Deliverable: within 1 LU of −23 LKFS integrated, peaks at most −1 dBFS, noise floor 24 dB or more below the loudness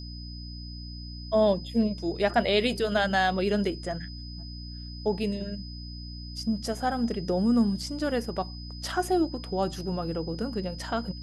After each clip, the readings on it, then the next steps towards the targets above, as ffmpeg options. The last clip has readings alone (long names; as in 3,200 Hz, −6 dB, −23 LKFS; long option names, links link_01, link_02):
mains hum 60 Hz; hum harmonics up to 300 Hz; level of the hum −38 dBFS; interfering tone 5,000 Hz; level of the tone −44 dBFS; integrated loudness −28.0 LKFS; sample peak −9.5 dBFS; target loudness −23.0 LKFS
→ -af "bandreject=frequency=60:width_type=h:width=4,bandreject=frequency=120:width_type=h:width=4,bandreject=frequency=180:width_type=h:width=4,bandreject=frequency=240:width_type=h:width=4,bandreject=frequency=300:width_type=h:width=4"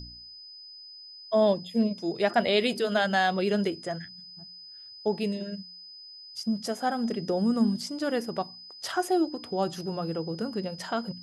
mains hum none found; interfering tone 5,000 Hz; level of the tone −44 dBFS
→ -af "bandreject=frequency=5000:width=30"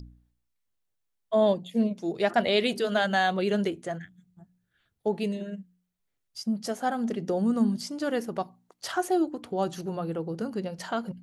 interfering tone none found; integrated loudness −28.5 LKFS; sample peak −9.5 dBFS; target loudness −23.0 LKFS
→ -af "volume=5.5dB"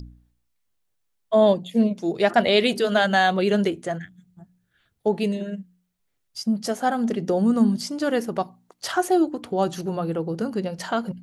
integrated loudness −23.0 LKFS; sample peak −4.0 dBFS; background noise floor −73 dBFS